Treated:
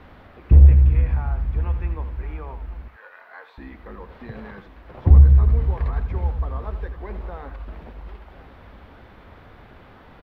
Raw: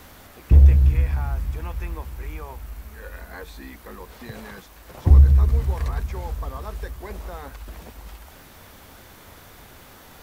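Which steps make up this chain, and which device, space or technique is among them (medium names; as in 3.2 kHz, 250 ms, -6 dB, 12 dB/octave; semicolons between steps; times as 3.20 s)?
shout across a valley (distance through air 410 m; echo from a far wall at 180 m, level -15 dB); 2.88–3.58 s: Chebyshev high-pass 930 Hz, order 2; delay 83 ms -11 dB; trim +1.5 dB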